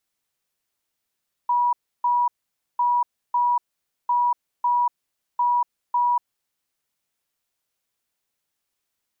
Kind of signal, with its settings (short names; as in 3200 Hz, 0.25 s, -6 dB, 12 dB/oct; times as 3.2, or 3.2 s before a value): beep pattern sine 970 Hz, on 0.24 s, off 0.31 s, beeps 2, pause 0.51 s, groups 4, -17 dBFS